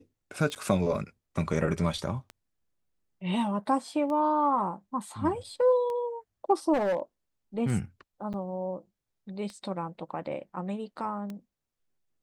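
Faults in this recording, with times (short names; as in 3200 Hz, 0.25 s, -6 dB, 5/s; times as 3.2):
tick 33 1/3 rpm -25 dBFS
0.55–0.56 gap 8 ms
6.73–7 clipped -23.5 dBFS
8.33–8.34 gap 8 ms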